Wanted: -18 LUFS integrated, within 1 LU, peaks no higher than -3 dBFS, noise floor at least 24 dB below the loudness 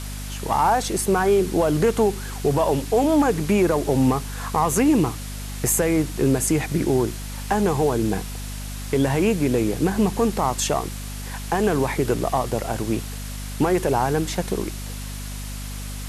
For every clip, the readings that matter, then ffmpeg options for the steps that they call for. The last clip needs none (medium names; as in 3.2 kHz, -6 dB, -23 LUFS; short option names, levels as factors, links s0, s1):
hum 50 Hz; highest harmonic 250 Hz; hum level -30 dBFS; noise floor -32 dBFS; noise floor target -46 dBFS; loudness -21.5 LUFS; peak level -8.5 dBFS; loudness target -18.0 LUFS
-> -af "bandreject=f=50:t=h:w=6,bandreject=f=100:t=h:w=6,bandreject=f=150:t=h:w=6,bandreject=f=200:t=h:w=6,bandreject=f=250:t=h:w=6"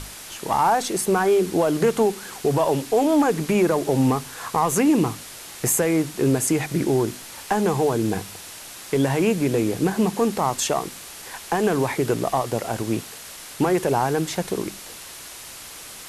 hum not found; noise floor -39 dBFS; noise floor target -46 dBFS
-> -af "afftdn=nr=7:nf=-39"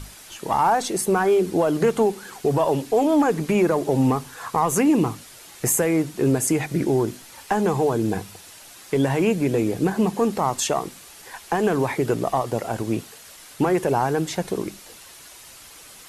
noise floor -45 dBFS; noise floor target -46 dBFS
-> -af "afftdn=nr=6:nf=-45"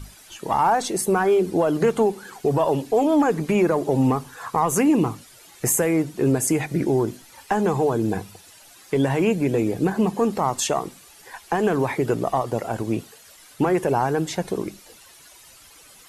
noise floor -49 dBFS; loudness -22.0 LUFS; peak level -9.0 dBFS; loudness target -18.0 LUFS
-> -af "volume=1.58"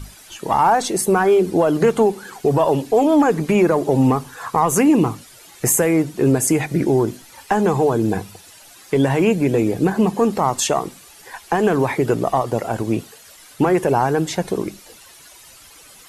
loudness -18.0 LUFS; peak level -5.0 dBFS; noise floor -45 dBFS